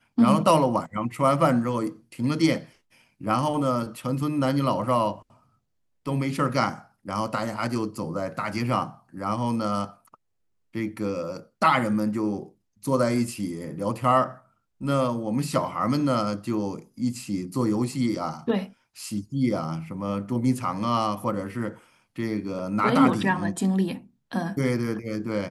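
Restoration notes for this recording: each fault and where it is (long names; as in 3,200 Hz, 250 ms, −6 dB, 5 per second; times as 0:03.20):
0:22.59: drop-out 2.6 ms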